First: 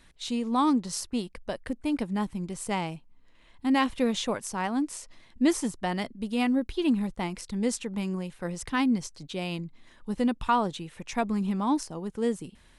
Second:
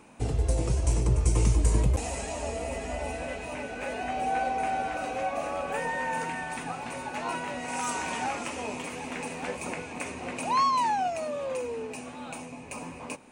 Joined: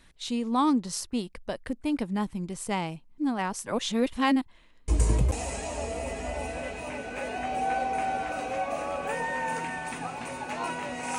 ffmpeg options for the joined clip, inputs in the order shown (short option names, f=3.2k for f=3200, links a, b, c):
-filter_complex "[0:a]apad=whole_dur=11.18,atrim=end=11.18,asplit=2[a][b];[a]atrim=end=3.182[c];[b]atrim=start=3.178:end=4.882,asetpts=PTS-STARTPTS,areverse[d];[1:a]atrim=start=1.528:end=7.83[e];[c][d]acrossfade=d=0.004:c1=hsin:c2=hsin[f];[f][e]acrossfade=d=0.004:c1=hsin:c2=hsin"